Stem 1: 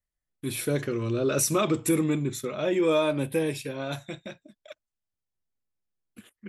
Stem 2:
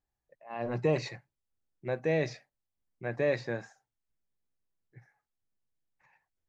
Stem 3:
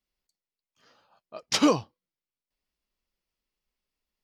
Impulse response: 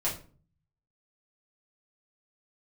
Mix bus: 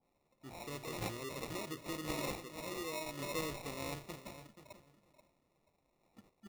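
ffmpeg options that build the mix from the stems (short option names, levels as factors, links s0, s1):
-filter_complex "[0:a]volume=0.282,afade=t=in:st=3.12:d=0.69:silence=0.354813,asplit=2[s0][s1];[s1]volume=0.282[s2];[1:a]highpass=f=930:p=1,aexciter=amount=11.5:drive=9.5:freq=5500,volume=0.15,asplit=3[s3][s4][s5];[s4]volume=0.531[s6];[s5]volume=0.631[s7];[2:a]highpass=460,flanger=delay=16.5:depth=2.2:speed=0.97,adelay=550,volume=0.168,asplit=2[s8][s9];[s9]volume=0.335[s10];[3:a]atrim=start_sample=2205[s11];[s6][s11]afir=irnorm=-1:irlink=0[s12];[s2][s7][s10]amix=inputs=3:normalize=0,aecho=0:1:483|966|1449:1|0.21|0.0441[s13];[s0][s3][s8][s12][s13]amix=inputs=5:normalize=0,acrusher=samples=28:mix=1:aa=0.000001,adynamicequalizer=threshold=0.00178:dfrequency=1700:dqfactor=0.7:tfrequency=1700:tqfactor=0.7:attack=5:release=100:ratio=0.375:range=2.5:mode=boostabove:tftype=highshelf"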